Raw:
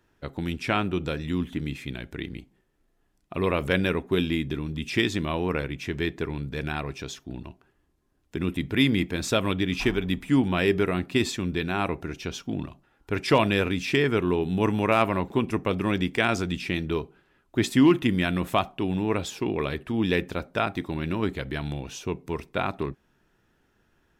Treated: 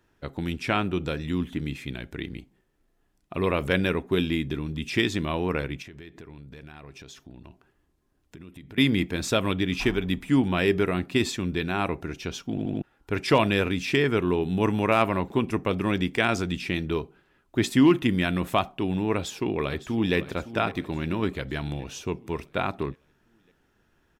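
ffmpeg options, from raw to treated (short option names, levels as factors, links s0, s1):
-filter_complex "[0:a]asettb=1/sr,asplit=3[s0][s1][s2];[s0]atrim=end=5.824[s3];[s1]atrim=start=5.82:end=8.78,asetpts=PTS-STARTPTS,afade=t=in:d=0.004:c=qsin,afade=t=out:st=2.956:d=0.004:c=qsin,acompressor=threshold=0.00891:ratio=8:attack=3.2:release=140:knee=1:detection=peak[s4];[s2]atrim=start=8.776[s5];[s3][s4]acrossfade=d=0.004:c1=hsin:c2=qsin[s6];[s6][s5]acrossfade=d=0.004:c1=qsin:c2=hsin,asplit=2[s7][s8];[s8]afade=t=in:st=19.15:d=0.01,afade=t=out:st=20.15:d=0.01,aecho=0:1:560|1120|1680|2240|2800|3360:0.199526|0.109739|0.0603567|0.0331962|0.0182579|0.0100418[s9];[s7][s9]amix=inputs=2:normalize=0,asplit=5[s10][s11][s12][s13][s14];[s10]atrim=end=12.582[s15];[s11]atrim=start=12.498:end=12.582[s16];[s12]atrim=start=12.498:end=12.582[s17];[s13]atrim=start=12.498:end=12.582[s18];[s14]atrim=start=12.818[s19];[s15][s16]acrossfade=d=0.004:c1=hsin:c2=hsin[s20];[s20][s17]acrossfade=d=0.004:c1=hsin:c2=hsin[s21];[s21][s18]acrossfade=d=0.004:c1=hsin:c2=hsin[s22];[s22][s19]acrossfade=d=0.004:c1=hsin:c2=hsin"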